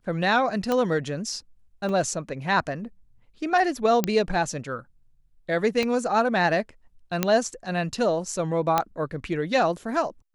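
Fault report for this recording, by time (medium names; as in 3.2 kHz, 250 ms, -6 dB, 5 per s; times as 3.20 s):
0.72 s: pop -12 dBFS
1.89 s: dropout 2.2 ms
4.04 s: pop -7 dBFS
5.83 s: pop -13 dBFS
7.23 s: pop -6 dBFS
8.78 s: pop -7 dBFS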